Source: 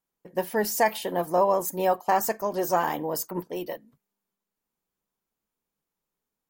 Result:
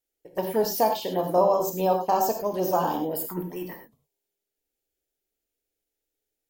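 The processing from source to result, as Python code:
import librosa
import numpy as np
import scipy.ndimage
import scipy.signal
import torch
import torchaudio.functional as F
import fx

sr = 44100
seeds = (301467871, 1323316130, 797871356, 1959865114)

y = fx.env_phaser(x, sr, low_hz=180.0, high_hz=2000.0, full_db=-23.0)
y = fx.rev_gated(y, sr, seeds[0], gate_ms=130, shape='flat', drr_db=4.0)
y = F.gain(torch.from_numpy(y), 1.5).numpy()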